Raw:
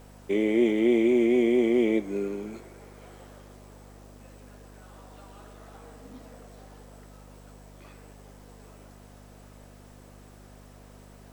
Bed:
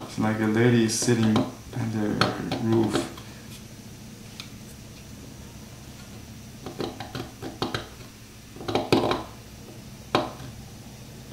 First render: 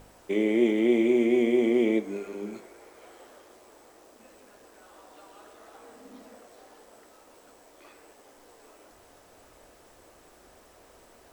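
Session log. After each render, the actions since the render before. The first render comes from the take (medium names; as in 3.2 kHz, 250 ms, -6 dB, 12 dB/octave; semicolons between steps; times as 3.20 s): de-hum 50 Hz, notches 10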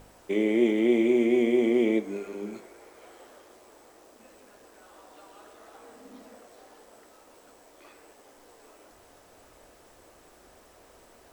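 no audible change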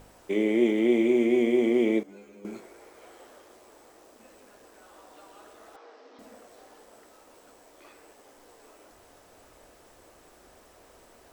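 2.03–2.45 s: inharmonic resonator 69 Hz, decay 0.46 s, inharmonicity 0.002; 5.76–6.19 s: elliptic band-pass 350–5300 Hz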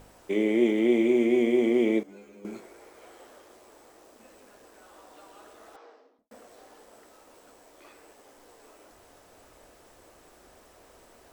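5.76–6.31 s: studio fade out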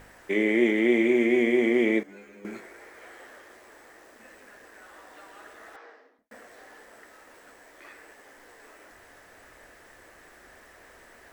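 peaking EQ 1.8 kHz +14 dB 0.66 oct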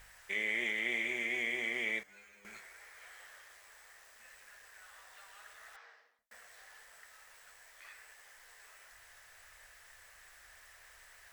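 amplifier tone stack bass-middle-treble 10-0-10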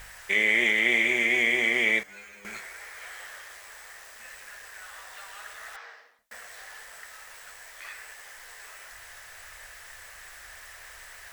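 trim +12 dB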